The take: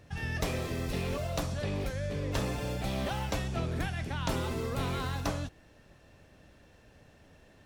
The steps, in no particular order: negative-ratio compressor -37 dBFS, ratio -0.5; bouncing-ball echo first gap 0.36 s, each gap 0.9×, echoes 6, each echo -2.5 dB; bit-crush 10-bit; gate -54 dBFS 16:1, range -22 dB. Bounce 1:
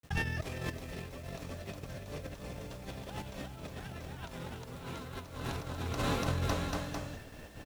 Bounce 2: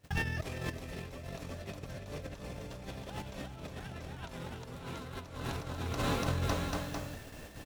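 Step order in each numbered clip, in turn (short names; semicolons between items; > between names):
bouncing-ball echo > gate > negative-ratio compressor > bit-crush; bouncing-ball echo > bit-crush > gate > negative-ratio compressor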